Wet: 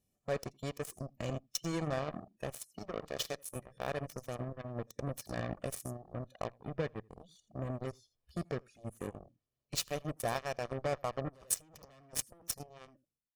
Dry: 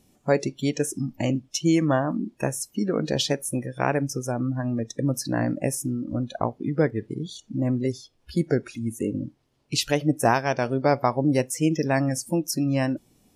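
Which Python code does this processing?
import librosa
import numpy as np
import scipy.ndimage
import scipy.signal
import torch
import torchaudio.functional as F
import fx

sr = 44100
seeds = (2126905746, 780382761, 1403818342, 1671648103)

p1 = fx.fade_out_tail(x, sr, length_s=1.33)
p2 = fx.low_shelf(p1, sr, hz=360.0, db=2.5)
p3 = fx.level_steps(p2, sr, step_db=13)
p4 = p2 + F.gain(torch.from_numpy(p3), 0.0).numpy()
p5 = fx.highpass(p4, sr, hz=230.0, slope=6, at=(2.61, 3.56))
p6 = 10.0 ** (-15.0 / 20.0) * np.tanh(p5 / 10.0 ** (-15.0 / 20.0))
p7 = p6 + fx.echo_single(p6, sr, ms=83, db=-16.5, dry=0)
p8 = fx.over_compress(p7, sr, threshold_db=-26.0, ratio=-1.0, at=(11.28, 12.54), fade=0.02)
p9 = fx.high_shelf(p8, sr, hz=10000.0, db=7.5)
p10 = fx.cheby_harmonics(p9, sr, harmonics=(3,), levels_db=(-9,), full_scale_db=-9.5)
p11 = p10 + 0.43 * np.pad(p10, (int(1.7 * sr / 1000.0), 0))[:len(p10)]
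y = F.gain(torch.from_numpy(p11), -2.0).numpy()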